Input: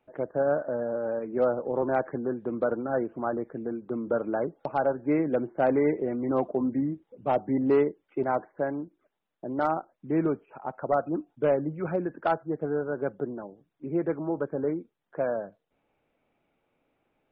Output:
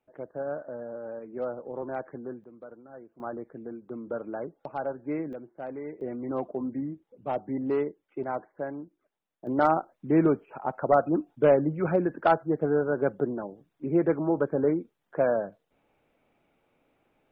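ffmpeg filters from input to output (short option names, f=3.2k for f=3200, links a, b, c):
-af "asetnsamples=n=441:p=0,asendcmd='2.44 volume volume -19dB;3.2 volume volume -6.5dB;5.33 volume volume -14dB;6.01 volume volume -5dB;9.47 volume volume 4dB',volume=-8dB"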